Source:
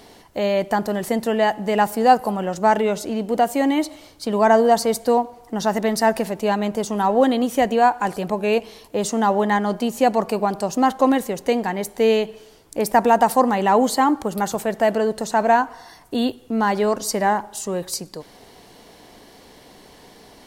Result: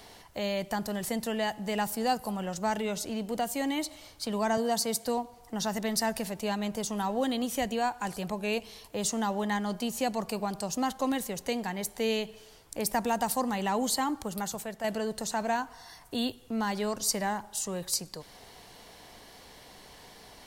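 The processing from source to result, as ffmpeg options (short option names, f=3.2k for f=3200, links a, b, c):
-filter_complex "[0:a]asettb=1/sr,asplit=3[a][b][c];[a]atrim=end=4.574[d];[b]atrim=start=4.57:end=5.05,asetpts=PTS-STARTPTS,afade=t=in:d=0.004:c=qsin,afade=t=out:st=0.476:d=0.004:c=qsin,highpass=f=110:w=0.5412,highpass=f=110:w=1.3066[e];[c]atrim=start=5.046[f];[d][e]acrossfade=d=0.004:c1=hsin:c2=qsin[g];[g][f]acrossfade=d=0.004:c1=qsin:c2=hsin,asplit=2[h][i];[h]atrim=end=14.84,asetpts=PTS-STARTPTS,afade=t=out:st=14.19:d=0.65:silence=0.421697[j];[i]atrim=start=14.84,asetpts=PTS-STARTPTS,afade=t=in:d=0.004:c=hsin:silence=0.421697[k];[j][k]concat=n=2:v=0:a=1,equalizer=f=300:t=o:w=1.8:g=-8,acrossover=split=320|3000[l][m][n];[m]acompressor=threshold=-45dB:ratio=1.5[o];[l][o][n]amix=inputs=3:normalize=0,volume=-2dB"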